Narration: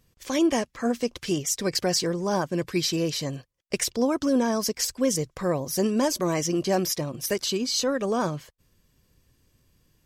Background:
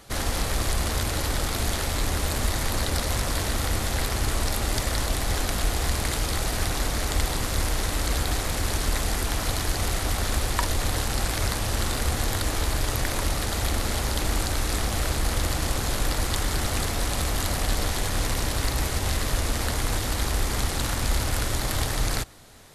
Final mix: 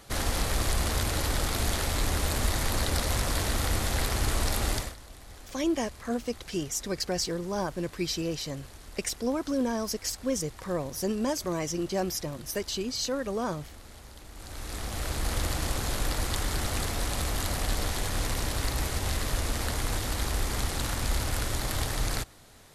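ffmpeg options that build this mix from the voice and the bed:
ffmpeg -i stem1.wav -i stem2.wav -filter_complex "[0:a]adelay=5250,volume=-5.5dB[link_01];[1:a]volume=16dB,afade=type=out:start_time=4.7:duration=0.25:silence=0.1,afade=type=in:start_time=14.34:duration=1.02:silence=0.125893[link_02];[link_01][link_02]amix=inputs=2:normalize=0" out.wav

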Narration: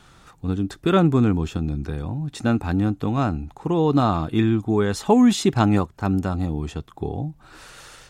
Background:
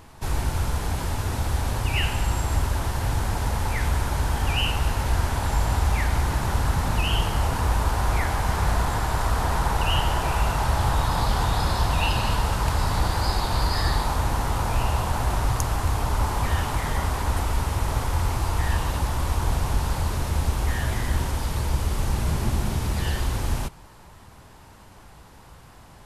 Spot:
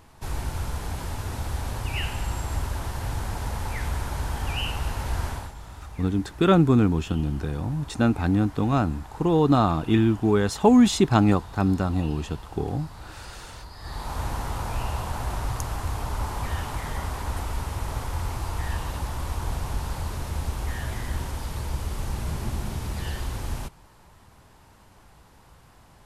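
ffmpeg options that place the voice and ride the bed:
ffmpeg -i stem1.wav -i stem2.wav -filter_complex "[0:a]adelay=5550,volume=-0.5dB[link_01];[1:a]volume=9dB,afade=type=out:start_time=5.28:duration=0.26:silence=0.188365,afade=type=in:start_time=13.79:duration=0.43:silence=0.199526[link_02];[link_01][link_02]amix=inputs=2:normalize=0" out.wav

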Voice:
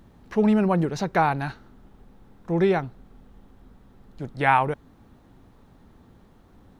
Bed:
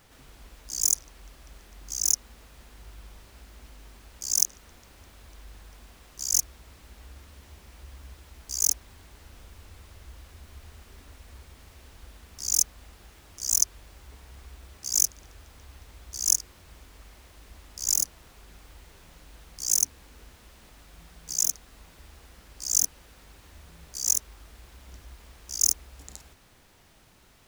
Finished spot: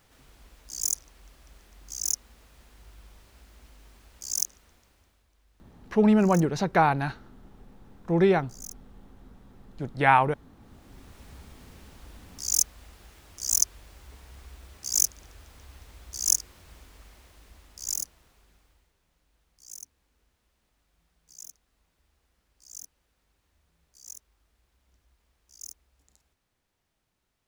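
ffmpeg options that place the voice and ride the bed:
ffmpeg -i stem1.wav -i stem2.wav -filter_complex "[0:a]adelay=5600,volume=0dB[link_01];[1:a]volume=14dB,afade=type=out:start_time=4.32:duration=0.94:silence=0.188365,afade=type=in:start_time=10.59:duration=0.64:silence=0.11885,afade=type=out:start_time=16.71:duration=2.22:silence=0.1[link_02];[link_01][link_02]amix=inputs=2:normalize=0" out.wav

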